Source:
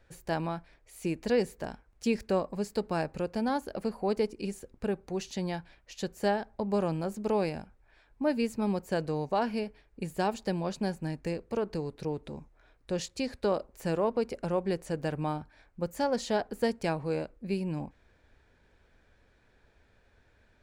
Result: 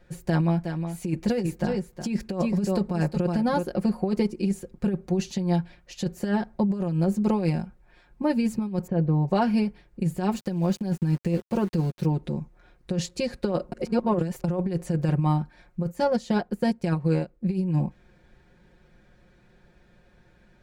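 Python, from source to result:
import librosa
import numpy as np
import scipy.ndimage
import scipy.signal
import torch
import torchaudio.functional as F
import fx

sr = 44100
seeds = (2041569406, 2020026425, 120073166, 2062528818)

y = fx.echo_single(x, sr, ms=365, db=-9.5, at=(0.57, 3.67), fade=0.02)
y = fx.spacing_loss(y, sr, db_at_10k=43, at=(8.87, 9.28))
y = fx.sample_gate(y, sr, floor_db=-45.5, at=(10.32, 12.06))
y = fx.transient(y, sr, attack_db=-1, sustain_db=-10, at=(15.9, 17.51), fade=0.02)
y = fx.edit(y, sr, fx.reverse_span(start_s=13.72, length_s=0.72), tone=tone)
y = fx.peak_eq(y, sr, hz=150.0, db=9.5, octaves=2.3)
y = y + 0.76 * np.pad(y, (int(5.6 * sr / 1000.0), 0))[:len(y)]
y = fx.over_compress(y, sr, threshold_db=-22.0, ratio=-0.5)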